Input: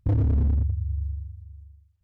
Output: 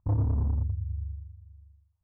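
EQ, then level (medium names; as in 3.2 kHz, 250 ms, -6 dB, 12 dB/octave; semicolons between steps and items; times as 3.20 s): hum notches 60/120/180/240/300/360/420/480 Hz; dynamic bell 110 Hz, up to +4 dB, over -31 dBFS, Q 1.2; resonant low-pass 1 kHz, resonance Q 3.6; -7.0 dB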